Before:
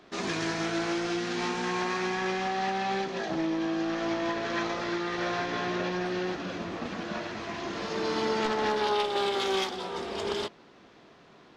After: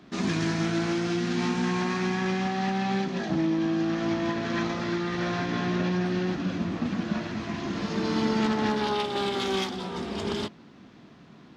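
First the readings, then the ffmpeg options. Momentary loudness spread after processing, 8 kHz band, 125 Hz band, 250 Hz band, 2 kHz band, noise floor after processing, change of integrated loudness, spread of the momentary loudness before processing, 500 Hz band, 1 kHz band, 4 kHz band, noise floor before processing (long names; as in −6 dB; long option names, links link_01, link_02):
6 LU, 0.0 dB, +10.0 dB, +6.0 dB, 0.0 dB, −51 dBFS, +2.5 dB, 8 LU, 0.0 dB, −1.0 dB, 0.0 dB, −55 dBFS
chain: -af "highpass=53,lowshelf=frequency=320:width_type=q:width=1.5:gain=8.5"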